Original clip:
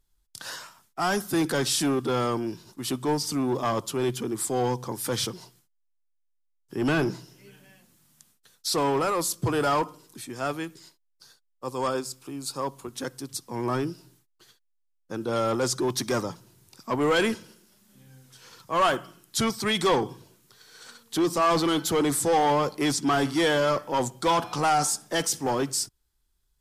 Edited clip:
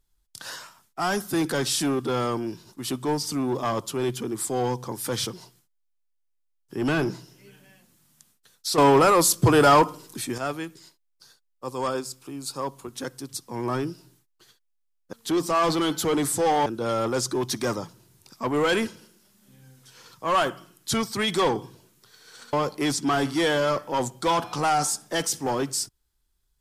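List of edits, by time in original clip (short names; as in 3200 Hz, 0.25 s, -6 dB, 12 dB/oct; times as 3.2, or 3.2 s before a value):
8.78–10.38 gain +8 dB
21–22.53 move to 15.13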